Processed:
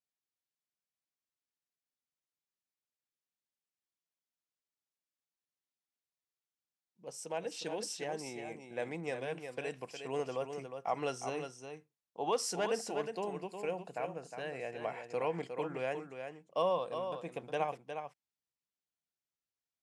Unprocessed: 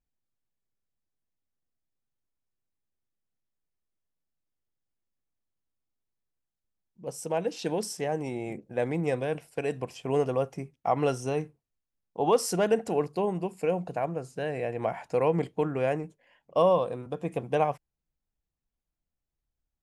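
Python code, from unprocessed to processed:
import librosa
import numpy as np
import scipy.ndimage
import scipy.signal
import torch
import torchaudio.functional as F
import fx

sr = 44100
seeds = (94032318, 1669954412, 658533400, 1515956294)

y = fx.bandpass_edges(x, sr, low_hz=100.0, high_hz=6600.0)
y = fx.tilt_eq(y, sr, slope=2.5)
y = y + 10.0 ** (-7.5 / 20.0) * np.pad(y, (int(360 * sr / 1000.0), 0))[:len(y)]
y = y * librosa.db_to_amplitude(-7.5)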